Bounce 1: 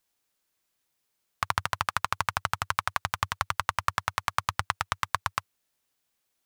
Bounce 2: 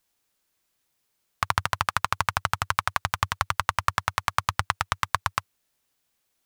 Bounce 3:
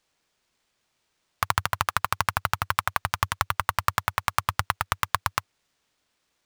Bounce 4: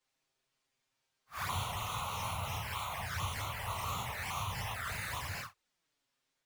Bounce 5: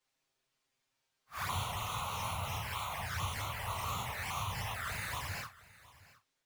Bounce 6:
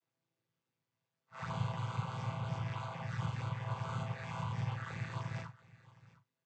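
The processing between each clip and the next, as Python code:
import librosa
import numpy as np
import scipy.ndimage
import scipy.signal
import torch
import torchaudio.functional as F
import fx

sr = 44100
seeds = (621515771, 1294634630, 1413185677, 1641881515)

y1 = fx.low_shelf(x, sr, hz=150.0, db=3.0)
y1 = F.gain(torch.from_numpy(y1), 3.0).numpy()
y2 = fx.sample_hold(y1, sr, seeds[0], rate_hz=13000.0, jitter_pct=20)
y3 = fx.phase_scramble(y2, sr, seeds[1], window_ms=200)
y3 = fx.env_flanger(y3, sr, rest_ms=7.6, full_db=-24.0)
y3 = F.gain(torch.from_numpy(y3), -5.5).numpy()
y4 = y3 + 10.0 ** (-20.0 / 20.0) * np.pad(y3, (int(714 * sr / 1000.0), 0))[:len(y3)]
y5 = fx.chord_vocoder(y4, sr, chord='minor triad', root=45)
y5 = F.gain(torch.from_numpy(y5), 1.5).numpy()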